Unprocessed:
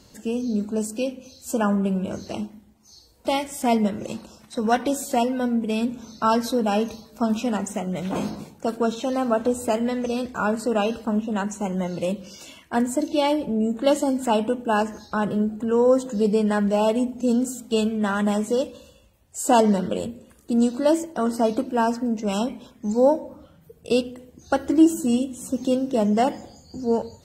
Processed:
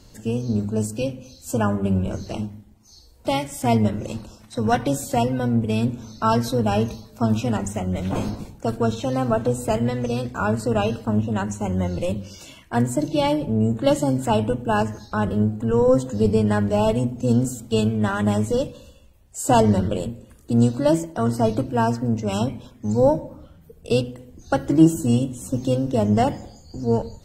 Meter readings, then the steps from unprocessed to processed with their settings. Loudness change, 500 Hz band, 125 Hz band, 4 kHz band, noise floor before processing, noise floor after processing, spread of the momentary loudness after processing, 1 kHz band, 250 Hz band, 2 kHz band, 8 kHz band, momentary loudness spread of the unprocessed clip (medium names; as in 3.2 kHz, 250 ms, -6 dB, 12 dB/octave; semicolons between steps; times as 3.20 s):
+1.5 dB, +0.5 dB, +11.5 dB, 0.0 dB, -54 dBFS, -50 dBFS, 10 LU, 0.0 dB, +0.5 dB, 0.0 dB, 0.0 dB, 10 LU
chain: octave divider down 1 oct, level -4 dB; bass shelf 83 Hz +11 dB; hum notches 50/100/150/200/250 Hz